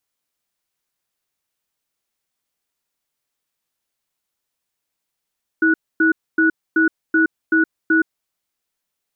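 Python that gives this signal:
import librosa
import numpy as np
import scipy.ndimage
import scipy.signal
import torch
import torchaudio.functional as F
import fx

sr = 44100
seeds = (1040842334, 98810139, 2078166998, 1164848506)

y = fx.cadence(sr, length_s=2.45, low_hz=322.0, high_hz=1470.0, on_s=0.12, off_s=0.26, level_db=-14.5)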